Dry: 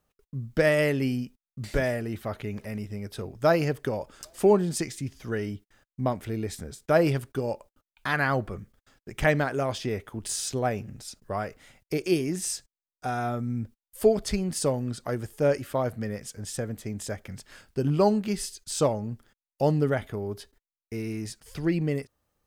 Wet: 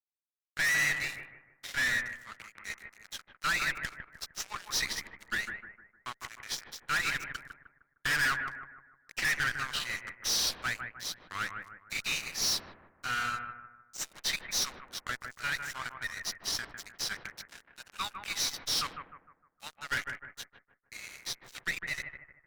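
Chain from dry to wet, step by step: knee-point frequency compression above 2.4 kHz 1.5:1; steep high-pass 1.3 kHz 36 dB/octave; dynamic bell 1.9 kHz, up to +5 dB, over -50 dBFS, Q 7.3; level rider gain up to 10 dB; crossover distortion -38.5 dBFS; valve stage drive 29 dB, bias 0.6; on a send: bucket-brigade echo 153 ms, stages 2048, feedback 39%, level -6.5 dB; 1.72–2.58 s: on the sum: three bands expanded up and down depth 70%; trim +3 dB

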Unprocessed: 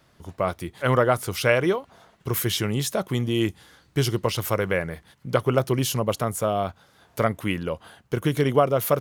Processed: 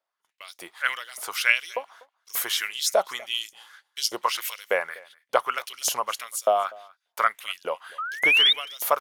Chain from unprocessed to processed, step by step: painted sound rise, 7.98–8.53 s, 1.2–3.8 kHz -19 dBFS; LFO high-pass saw up 1.7 Hz 580–6400 Hz; gate -49 dBFS, range -26 dB; on a send: delay 245 ms -23.5 dB

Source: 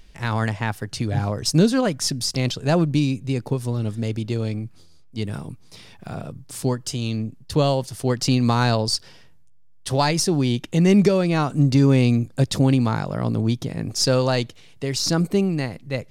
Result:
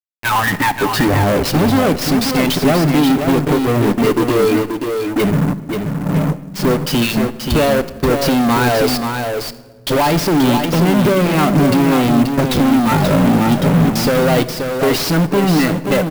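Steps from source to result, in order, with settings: spectral noise reduction 23 dB; in parallel at +2.5 dB: peak limiter -14 dBFS, peak gain reduction 7.5 dB; on the sum: peaking EQ 130 Hz -15 dB 0.31 oct; compression 12:1, threshold -23 dBFS, peak gain reduction 15.5 dB; level-controlled noise filter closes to 480 Hz, open at -22 dBFS; fuzz box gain 42 dB, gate -41 dBFS; distance through air 140 m; delay 531 ms -6 dB; simulated room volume 1200 m³, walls mixed, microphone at 0.37 m; sampling jitter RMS 0.025 ms; trim +1.5 dB

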